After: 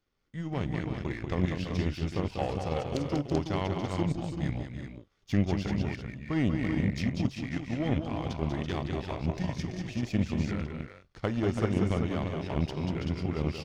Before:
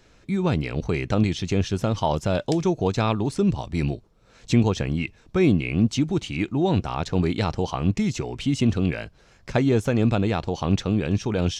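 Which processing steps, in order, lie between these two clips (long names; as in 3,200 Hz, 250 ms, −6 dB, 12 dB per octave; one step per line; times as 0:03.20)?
multi-tap delay 42/162/282/328 ms −18.5/−5/−6.5/−6 dB
speed change −15%
power curve on the samples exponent 1.4
level −6 dB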